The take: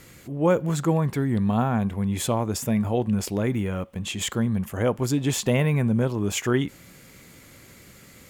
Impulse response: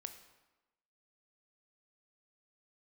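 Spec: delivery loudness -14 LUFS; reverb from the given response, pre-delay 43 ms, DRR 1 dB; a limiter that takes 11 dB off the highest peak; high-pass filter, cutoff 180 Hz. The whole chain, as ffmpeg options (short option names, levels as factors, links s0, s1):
-filter_complex "[0:a]highpass=180,alimiter=limit=0.106:level=0:latency=1,asplit=2[s0][s1];[1:a]atrim=start_sample=2205,adelay=43[s2];[s1][s2]afir=irnorm=-1:irlink=0,volume=1.41[s3];[s0][s3]amix=inputs=2:normalize=0,volume=4.73"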